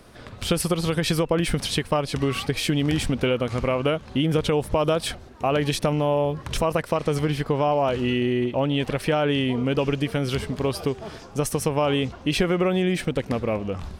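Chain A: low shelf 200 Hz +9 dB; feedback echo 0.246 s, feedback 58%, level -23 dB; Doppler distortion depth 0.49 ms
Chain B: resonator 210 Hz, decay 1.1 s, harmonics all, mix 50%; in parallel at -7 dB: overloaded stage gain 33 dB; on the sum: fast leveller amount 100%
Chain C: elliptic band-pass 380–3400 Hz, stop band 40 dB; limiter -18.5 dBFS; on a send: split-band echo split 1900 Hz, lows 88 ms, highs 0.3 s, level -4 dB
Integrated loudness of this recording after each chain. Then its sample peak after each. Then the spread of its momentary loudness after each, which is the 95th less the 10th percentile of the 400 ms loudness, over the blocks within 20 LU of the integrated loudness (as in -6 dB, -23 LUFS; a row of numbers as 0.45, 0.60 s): -21.5, -23.0, -27.5 LUFS; -5.0, -6.5, -13.5 dBFS; 5, 1, 4 LU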